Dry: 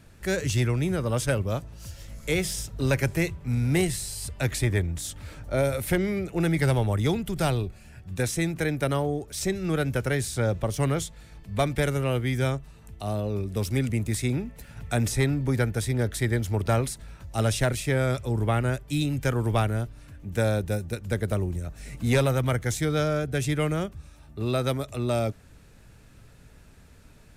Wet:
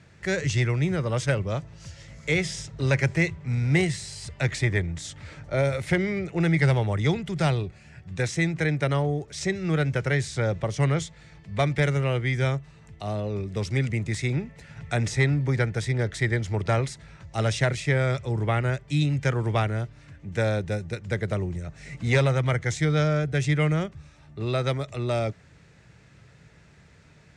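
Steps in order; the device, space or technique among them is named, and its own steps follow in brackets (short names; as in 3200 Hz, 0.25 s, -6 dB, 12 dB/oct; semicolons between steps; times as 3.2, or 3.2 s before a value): car door speaker (speaker cabinet 81–7300 Hz, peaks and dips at 150 Hz +6 dB, 250 Hz -6 dB, 2000 Hz +7 dB)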